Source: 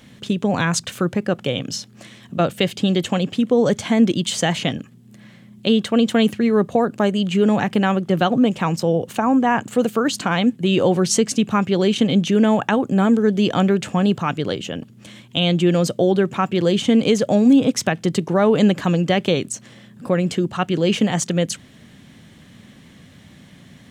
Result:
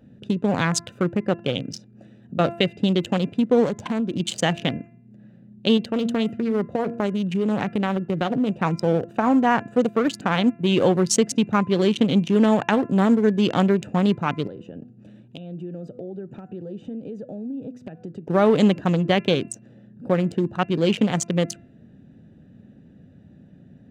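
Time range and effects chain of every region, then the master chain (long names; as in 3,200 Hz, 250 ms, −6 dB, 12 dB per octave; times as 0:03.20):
0:03.65–0:04.20: parametric band 1,000 Hz +14.5 dB 0.26 octaves + downward compressor 8 to 1, threshold −18 dBFS
0:05.77–0:08.49: hum removal 234.9 Hz, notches 14 + downward compressor 3 to 1, threshold −17 dBFS
0:14.47–0:18.28: high-pass filter 68 Hz + hum removal 247.4 Hz, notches 6 + downward compressor 4 to 1, threshold −30 dBFS
whole clip: adaptive Wiener filter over 41 samples; low-shelf EQ 170 Hz −4 dB; hum removal 341.3 Hz, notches 8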